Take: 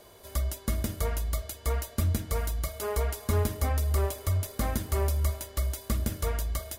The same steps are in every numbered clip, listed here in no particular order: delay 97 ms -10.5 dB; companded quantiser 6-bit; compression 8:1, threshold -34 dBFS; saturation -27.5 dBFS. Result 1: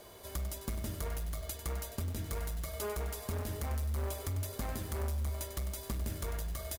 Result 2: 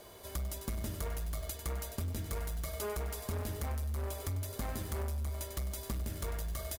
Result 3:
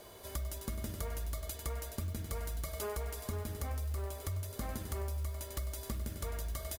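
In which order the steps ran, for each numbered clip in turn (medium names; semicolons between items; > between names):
saturation > companded quantiser > compression > delay; companded quantiser > saturation > delay > compression; delay > companded quantiser > compression > saturation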